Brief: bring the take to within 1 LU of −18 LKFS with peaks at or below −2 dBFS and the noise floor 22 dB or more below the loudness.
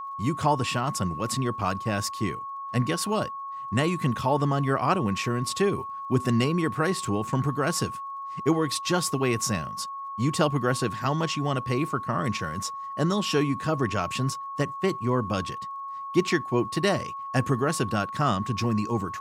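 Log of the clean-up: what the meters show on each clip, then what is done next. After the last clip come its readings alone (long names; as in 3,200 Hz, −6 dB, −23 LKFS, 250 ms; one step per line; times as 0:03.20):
crackle rate 24 per second; interfering tone 1,100 Hz; level of the tone −33 dBFS; integrated loudness −27.0 LKFS; sample peak −9.0 dBFS; target loudness −18.0 LKFS
→ click removal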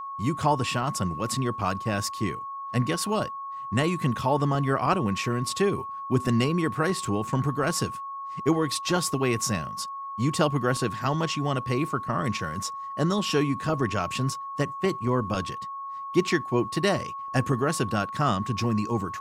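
crackle rate 0 per second; interfering tone 1,100 Hz; level of the tone −33 dBFS
→ notch filter 1,100 Hz, Q 30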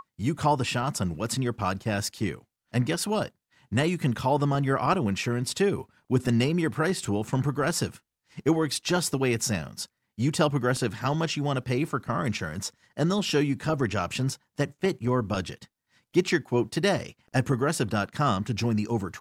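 interfering tone none found; integrated loudness −27.5 LKFS; sample peak −9.5 dBFS; target loudness −18.0 LKFS
→ level +9.5 dB
brickwall limiter −2 dBFS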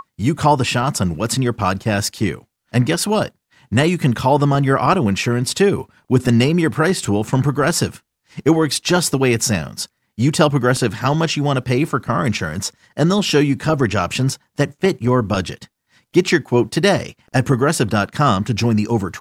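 integrated loudness −18.0 LKFS; sample peak −2.0 dBFS; background noise floor −72 dBFS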